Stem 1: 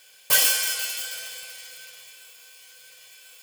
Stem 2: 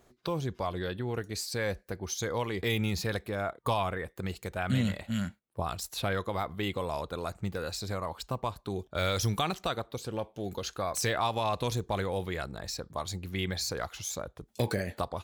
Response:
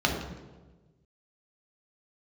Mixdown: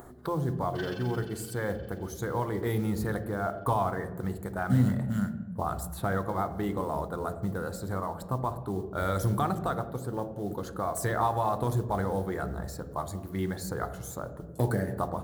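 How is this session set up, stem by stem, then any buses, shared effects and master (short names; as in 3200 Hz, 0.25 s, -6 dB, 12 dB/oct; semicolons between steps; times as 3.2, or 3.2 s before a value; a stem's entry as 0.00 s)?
-17.0 dB, 0.45 s, send -10 dB, Gaussian blur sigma 2.3 samples; AM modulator 23 Hz, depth 90%
0.0 dB, 0.00 s, send -18.5 dB, band shelf 3800 Hz -15.5 dB; modulation noise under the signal 28 dB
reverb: on, RT60 1.3 s, pre-delay 3 ms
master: upward compressor, threshold -38 dBFS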